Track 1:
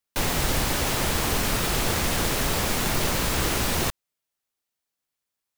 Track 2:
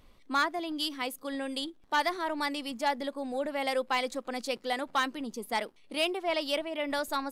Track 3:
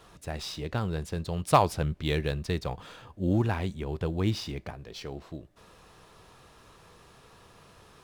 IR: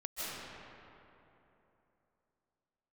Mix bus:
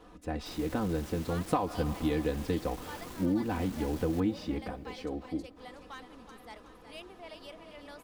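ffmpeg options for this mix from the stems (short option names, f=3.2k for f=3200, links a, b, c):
-filter_complex "[0:a]asoftclip=type=hard:threshold=-26.5dB,adelay=300,volume=-19.5dB,asplit=2[a][b];[b]volume=-18.5dB[c];[1:a]adelay=950,volume=-18.5dB,asplit=3[d][e][f];[e]volume=-23dB[g];[f]volume=-9.5dB[h];[2:a]highshelf=f=2.5k:g=-11.5,aecho=1:1:4:0.76,volume=-1.5dB,asplit=2[i][j];[j]volume=-21.5dB[k];[a][i]amix=inputs=2:normalize=0,equalizer=f=320:w=3:g=10,acompressor=threshold=-26dB:ratio=6,volume=0dB[l];[3:a]atrim=start_sample=2205[m];[g][k]amix=inputs=2:normalize=0[n];[n][m]afir=irnorm=-1:irlink=0[o];[c][h]amix=inputs=2:normalize=0,aecho=0:1:370|740|1110|1480|1850|2220|2590:1|0.47|0.221|0.104|0.0488|0.0229|0.0108[p];[d][l][o][p]amix=inputs=4:normalize=0"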